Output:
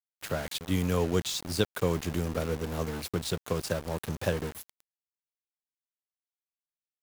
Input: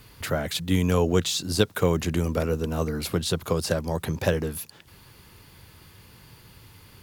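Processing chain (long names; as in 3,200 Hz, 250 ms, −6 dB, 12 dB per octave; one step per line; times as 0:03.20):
centre clipping without the shift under −29.5 dBFS
level −5.5 dB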